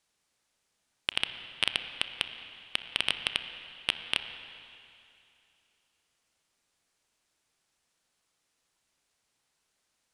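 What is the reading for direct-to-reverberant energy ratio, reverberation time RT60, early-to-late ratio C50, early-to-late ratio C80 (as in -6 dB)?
8.0 dB, 2.7 s, 9.0 dB, 9.5 dB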